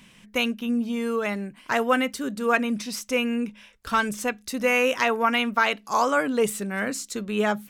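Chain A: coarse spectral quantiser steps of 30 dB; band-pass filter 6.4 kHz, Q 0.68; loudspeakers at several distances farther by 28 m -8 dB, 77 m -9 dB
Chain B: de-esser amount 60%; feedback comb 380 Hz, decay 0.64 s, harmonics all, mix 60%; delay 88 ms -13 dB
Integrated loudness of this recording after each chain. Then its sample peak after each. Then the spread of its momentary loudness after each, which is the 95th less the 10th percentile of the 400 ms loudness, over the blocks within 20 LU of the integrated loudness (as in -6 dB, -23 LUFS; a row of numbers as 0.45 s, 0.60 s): -33.5 LUFS, -32.5 LUFS; -15.0 dBFS, -15.5 dBFS; 10 LU, 8 LU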